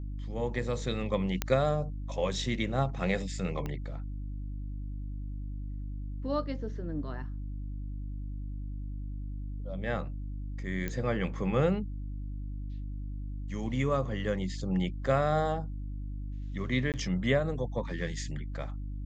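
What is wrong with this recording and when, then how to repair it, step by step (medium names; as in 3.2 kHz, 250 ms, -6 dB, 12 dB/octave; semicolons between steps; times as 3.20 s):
hum 50 Hz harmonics 6 -37 dBFS
1.42 s: pop -12 dBFS
3.66 s: pop -23 dBFS
10.88 s: pop -20 dBFS
16.92–16.94 s: dropout 18 ms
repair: de-click; de-hum 50 Hz, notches 6; interpolate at 16.92 s, 18 ms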